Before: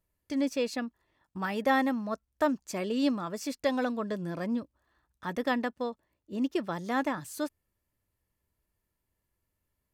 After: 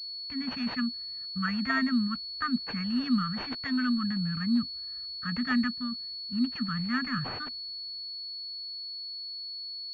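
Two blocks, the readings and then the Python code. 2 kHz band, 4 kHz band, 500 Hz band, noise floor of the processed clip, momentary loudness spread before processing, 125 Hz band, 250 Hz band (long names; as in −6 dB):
+2.5 dB, +13.0 dB, −19.5 dB, −39 dBFS, 10 LU, +7.0 dB, +2.5 dB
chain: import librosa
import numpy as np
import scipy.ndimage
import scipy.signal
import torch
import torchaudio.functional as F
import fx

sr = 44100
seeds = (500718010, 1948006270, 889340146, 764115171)

y = fx.transient(x, sr, attack_db=0, sustain_db=5)
y = scipy.signal.sosfilt(scipy.signal.cheby1(5, 1.0, [250.0, 1200.0], 'bandstop', fs=sr, output='sos'), y)
y = fx.pwm(y, sr, carrier_hz=4400.0)
y = y * librosa.db_to_amplitude(5.5)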